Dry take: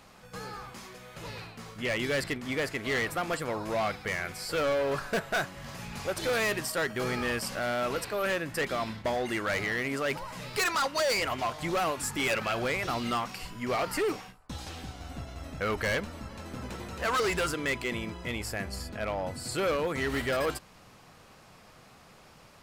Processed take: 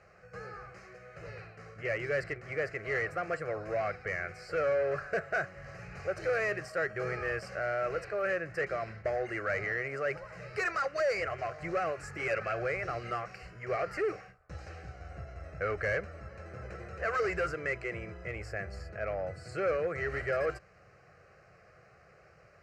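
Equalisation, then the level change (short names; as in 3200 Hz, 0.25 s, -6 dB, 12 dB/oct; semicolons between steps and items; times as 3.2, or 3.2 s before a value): HPF 55 Hz; air absorption 160 m; fixed phaser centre 940 Hz, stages 6; 0.0 dB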